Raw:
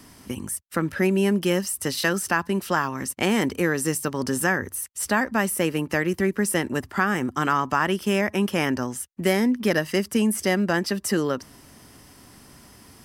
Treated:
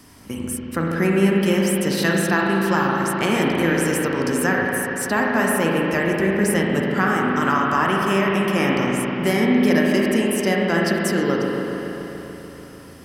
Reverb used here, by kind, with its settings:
spring reverb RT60 3.9 s, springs 36/48 ms, chirp 30 ms, DRR −2.5 dB

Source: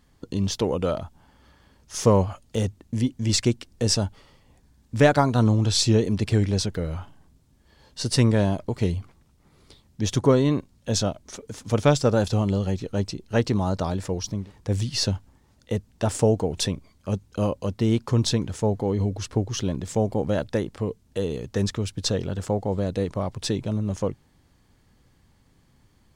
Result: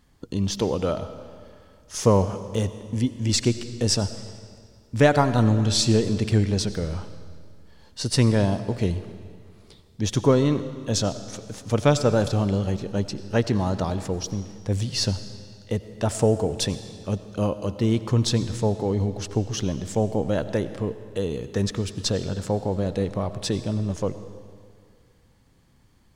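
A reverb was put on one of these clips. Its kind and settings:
comb and all-pass reverb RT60 2.1 s, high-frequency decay 0.9×, pre-delay 50 ms, DRR 12 dB

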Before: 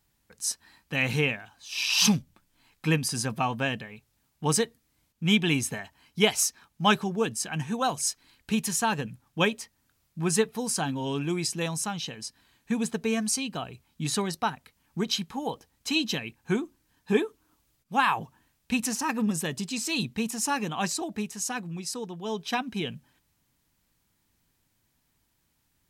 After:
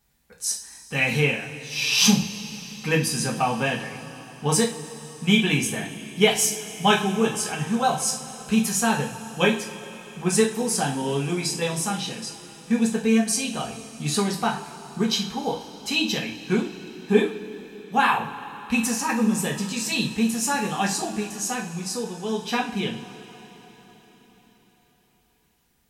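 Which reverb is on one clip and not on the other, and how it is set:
coupled-rooms reverb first 0.35 s, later 4.9 s, from −21 dB, DRR −2.5 dB

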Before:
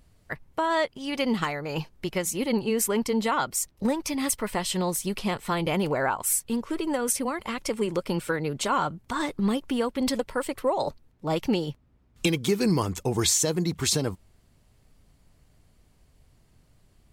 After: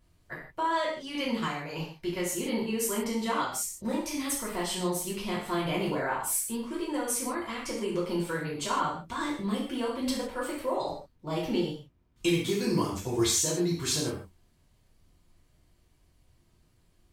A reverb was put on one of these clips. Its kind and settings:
reverb whose tail is shaped and stops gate 190 ms falling, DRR −6.5 dB
level −11 dB

